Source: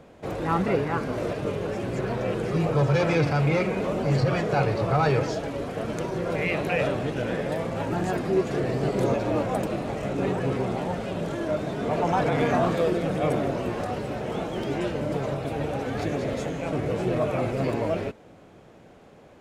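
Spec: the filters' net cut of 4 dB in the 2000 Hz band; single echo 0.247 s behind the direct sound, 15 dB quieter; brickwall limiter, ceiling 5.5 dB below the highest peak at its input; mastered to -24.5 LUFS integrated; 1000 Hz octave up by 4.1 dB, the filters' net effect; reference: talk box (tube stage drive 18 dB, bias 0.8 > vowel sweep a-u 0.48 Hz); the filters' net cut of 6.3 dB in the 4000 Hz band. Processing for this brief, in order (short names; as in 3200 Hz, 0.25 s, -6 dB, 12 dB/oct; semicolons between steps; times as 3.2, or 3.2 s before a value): bell 1000 Hz +7.5 dB; bell 2000 Hz -6.5 dB; bell 4000 Hz -6.5 dB; limiter -14.5 dBFS; echo 0.247 s -15 dB; tube stage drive 18 dB, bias 0.8; vowel sweep a-u 0.48 Hz; gain +16 dB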